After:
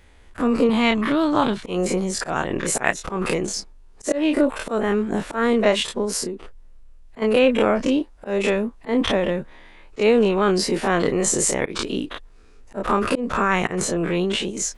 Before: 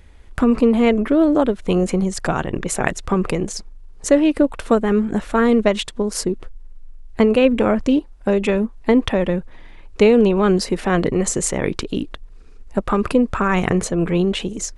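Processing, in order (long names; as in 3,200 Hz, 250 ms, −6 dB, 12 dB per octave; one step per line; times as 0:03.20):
every bin's largest magnitude spread in time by 60 ms
0:00.69–0:01.63: octave-band graphic EQ 125/500/1,000/4,000 Hz +12/−10/+7/+9 dB
0:02.69–0:03.17: transient designer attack +4 dB, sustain −5 dB
0:06.16–0:07.22: downward compressor 3 to 1, threshold −21 dBFS, peak gain reduction 9.5 dB
low-shelf EQ 190 Hz −9 dB
volume swells 129 ms
level −3 dB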